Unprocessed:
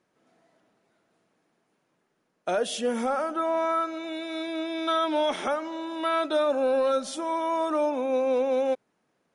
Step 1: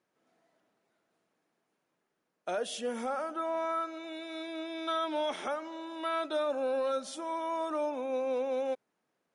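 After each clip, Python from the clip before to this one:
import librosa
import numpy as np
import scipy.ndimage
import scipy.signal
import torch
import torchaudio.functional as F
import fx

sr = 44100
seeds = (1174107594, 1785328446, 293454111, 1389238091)

y = fx.low_shelf(x, sr, hz=210.0, db=-6.0)
y = F.gain(torch.from_numpy(y), -6.5).numpy()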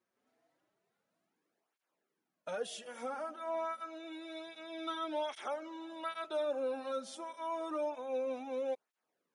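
y = fx.flanger_cancel(x, sr, hz=0.28, depth_ms=6.9)
y = F.gain(torch.from_numpy(y), -2.5).numpy()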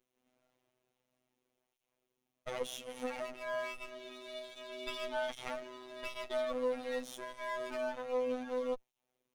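y = fx.lower_of_two(x, sr, delay_ms=0.32)
y = fx.robotise(y, sr, hz=126.0)
y = F.gain(torch.from_numpy(y), 4.0).numpy()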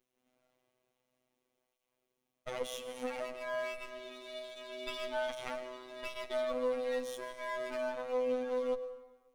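y = fx.rev_plate(x, sr, seeds[0], rt60_s=1.3, hf_ratio=0.6, predelay_ms=90, drr_db=11.0)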